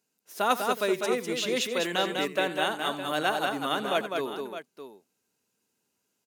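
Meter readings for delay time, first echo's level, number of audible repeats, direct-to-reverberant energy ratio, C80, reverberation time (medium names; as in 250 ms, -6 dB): 86 ms, -15.5 dB, 3, no reverb, no reverb, no reverb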